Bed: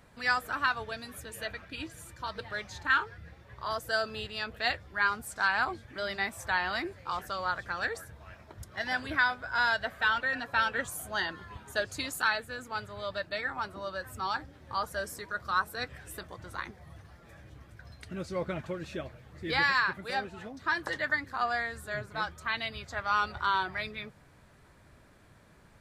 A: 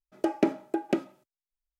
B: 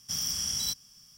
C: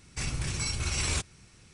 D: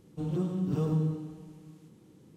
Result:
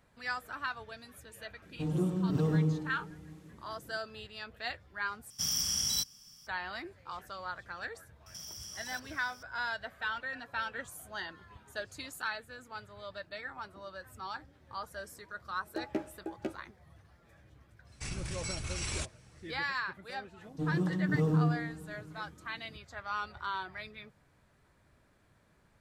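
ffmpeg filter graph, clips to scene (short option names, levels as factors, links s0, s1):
-filter_complex "[4:a]asplit=2[s0][s1];[2:a]asplit=2[s2][s3];[0:a]volume=0.376[s4];[s3]acompressor=threshold=0.00708:ratio=6:attack=3.2:release=140:knee=1:detection=peak[s5];[1:a]asplit=2[s6][s7];[s7]adelay=13,volume=0.631[s8];[s6][s8]amix=inputs=2:normalize=0[s9];[s1]aecho=1:1:6.5:0.38[s10];[s4]asplit=2[s11][s12];[s11]atrim=end=5.304[s13];[s2]atrim=end=1.17,asetpts=PTS-STARTPTS,volume=0.944[s14];[s12]atrim=start=6.466[s15];[s0]atrim=end=2.36,asetpts=PTS-STARTPTS,afade=t=in:d=0.004:c=hsin,afade=t=out:st=2.356:d=0.004:c=hsin,adelay=1620[s16];[s5]atrim=end=1.17,asetpts=PTS-STARTPTS,volume=0.944,afade=t=in:d=0.004:c=hsin,afade=t=out:st=1.166:d=0.004:c=hsin,adelay=364266S[s17];[s9]atrim=end=1.79,asetpts=PTS-STARTPTS,volume=0.237,afade=t=in:d=0.004:c=hsin,afade=t=out:st=1.786:d=0.004:c=hsin,adelay=15520[s18];[3:a]atrim=end=1.73,asetpts=PTS-STARTPTS,volume=0.447,afade=t=in:d=0.1,afade=t=out:st=1.63:d=0.1,adelay=17840[s19];[s10]atrim=end=2.36,asetpts=PTS-STARTPTS,volume=0.794,afade=t=in:d=0.004:c=hsin,afade=t=out:st=2.356:d=0.004:c=hsin,adelay=20410[s20];[s13][s14]acrossfade=d=0.004:c1=hsin:c2=hsin[s21];[s21][s15]acrossfade=d=0.004:c1=hsin:c2=hsin[s22];[s22][s16][s17][s18][s19][s20]amix=inputs=6:normalize=0"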